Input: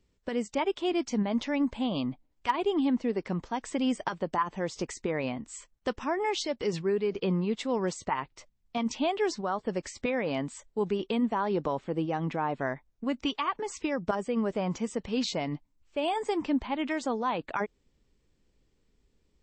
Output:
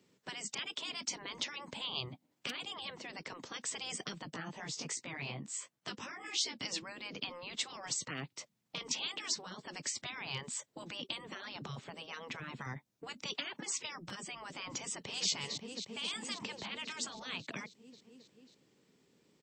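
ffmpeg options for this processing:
ffmpeg -i in.wav -filter_complex "[0:a]asettb=1/sr,asplit=3[link_01][link_02][link_03];[link_01]atrim=end=4.304[link_04];[link_02]atrim=start=4.3:end=6.59,asetpts=PTS-STARTPTS,afade=type=in:duration=0.004:curve=qsin,afade=type=out:start_time=2.286:duration=0.004:curve=qsin,flanger=delay=15:depth=5.3:speed=2.7[link_05];[link_03]atrim=start=6.586[link_06];[link_04][link_05]acrossfade=duration=0.004:curve1=hsin:curve2=qsin[link_07];[link_07][link_06]acrossfade=duration=0.004:curve1=qsin:curve2=hsin,asplit=2[link_08][link_09];[link_09]afade=type=in:start_time=14.79:duration=0.01,afade=type=out:start_time=15.3:duration=0.01,aecho=0:1:270|540|810|1080|1350|1620|1890|2160|2430|2700|2970|3240:0.266073|0.199554|0.149666|0.112249|0.084187|0.0631403|0.0473552|0.0355164|0.0266373|0.019978|0.0149835|0.0112376[link_10];[link_08][link_10]amix=inputs=2:normalize=0,highpass=frequency=140:width=0.5412,highpass=frequency=140:width=1.3066,afftfilt=real='re*lt(hypot(re,im),0.0631)':imag='im*lt(hypot(re,im),0.0631)':win_size=1024:overlap=0.75,acrossover=split=270|3000[link_11][link_12][link_13];[link_12]acompressor=threshold=-59dB:ratio=2[link_14];[link_11][link_14][link_13]amix=inputs=3:normalize=0,volume=6dB" out.wav

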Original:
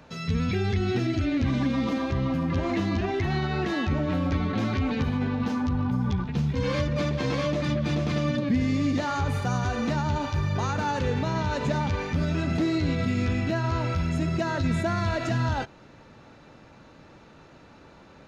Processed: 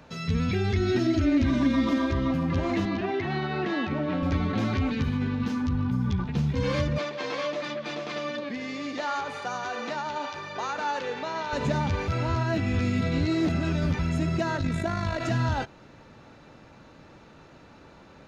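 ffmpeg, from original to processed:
ffmpeg -i in.wav -filter_complex "[0:a]asettb=1/sr,asplit=3[link_01][link_02][link_03];[link_01]atrim=end=0.734[link_04];[link_02]atrim=start=0.73:end=2.31,asetpts=PTS-STARTPTS,afade=type=in:duration=0.004:curve=qsin,afade=type=out:start_time=1.576:duration=0.004:curve=qsin,aecho=1:1:3.2:0.65,atrim=end_sample=69678[link_05];[link_03]atrim=start=2.306[link_06];[link_04][link_05]acrossfade=duration=0.004:curve1=hsin:curve2=qsin[link_07];[link_07][link_06]acrossfade=duration=0.004:curve1=qsin:curve2=hsin,asettb=1/sr,asplit=3[link_08][link_09][link_10];[link_08]atrim=end=2.854[link_11];[link_09]atrim=start=2.85:end=4.23,asetpts=PTS-STARTPTS,afade=type=in:duration=0.004:curve=qsin,afade=type=out:start_time=1.376:duration=0.004:curve=qsin,highpass=170,lowpass=4100[link_12];[link_10]atrim=start=4.226[link_13];[link_11][link_12]acrossfade=duration=0.004:curve1=hsin:curve2=qsin[link_14];[link_14][link_13]acrossfade=duration=0.004:curve1=qsin:curve2=hsin,asettb=1/sr,asplit=3[link_15][link_16][link_17];[link_15]atrim=end=4.894[link_18];[link_16]atrim=start=4.89:end=6.19,asetpts=PTS-STARTPTS,afade=type=in:duration=0.004:curve=qsin,afade=type=out:start_time=1.296:duration=0.004:curve=qsin,equalizer=frequency=690:width_type=o:width=0.95:gain=-10[link_19];[link_17]atrim=start=6.186[link_20];[link_18][link_19]acrossfade=duration=0.004:curve1=hsin:curve2=qsin[link_21];[link_21][link_20]acrossfade=duration=0.004:curve1=qsin:curve2=hsin,asettb=1/sr,asplit=3[link_22][link_23][link_24];[link_22]atrim=end=6.984[link_25];[link_23]atrim=start=6.98:end=11.53,asetpts=PTS-STARTPTS,afade=type=in:duration=0.004:curve=qsin,afade=type=out:start_time=4.546:duration=0.004:curve=qsin,highpass=470,lowpass=6100[link_26];[link_24]atrim=start=11.526[link_27];[link_25][link_26]acrossfade=duration=0.004:curve1=hsin:curve2=qsin[link_28];[link_28][link_27]acrossfade=duration=0.004:curve1=qsin:curve2=hsin,asettb=1/sr,asplit=3[link_29][link_30][link_31];[link_29]atrim=end=14.574[link_32];[link_30]atrim=start=14.57:end=15.21,asetpts=PTS-STARTPTS,afade=type=in:duration=0.004:curve=qsin,afade=type=out:start_time=0.636:duration=0.004:curve=qsin,tremolo=f=52:d=0.571[link_33];[link_31]atrim=start=15.206[link_34];[link_32][link_33]acrossfade=duration=0.004:curve1=hsin:curve2=qsin[link_35];[link_35][link_34]acrossfade=duration=0.004:curve1=qsin:curve2=hsin,asplit=3[link_36][link_37][link_38];[link_36]atrim=end=12.082[link_39];[link_37]atrim=start=12.078:end=13.992,asetpts=PTS-STARTPTS,areverse[link_40];[link_38]atrim=start=13.988[link_41];[link_39][link_40]acrossfade=duration=0.004:curve1=hsin:curve2=hsin[link_42];[link_42][link_41]acrossfade=duration=0.004:curve1=hsin:curve2=hsin" out.wav

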